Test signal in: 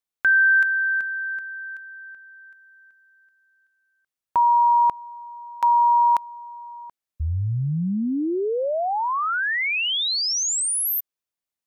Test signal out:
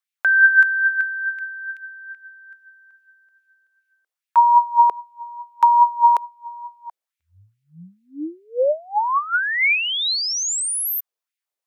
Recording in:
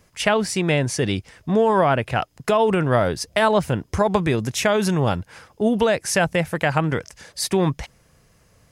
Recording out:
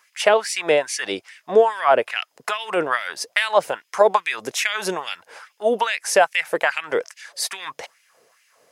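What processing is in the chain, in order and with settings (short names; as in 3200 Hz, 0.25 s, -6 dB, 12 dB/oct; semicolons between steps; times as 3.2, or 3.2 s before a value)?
LFO high-pass sine 2.4 Hz 440–2400 Hz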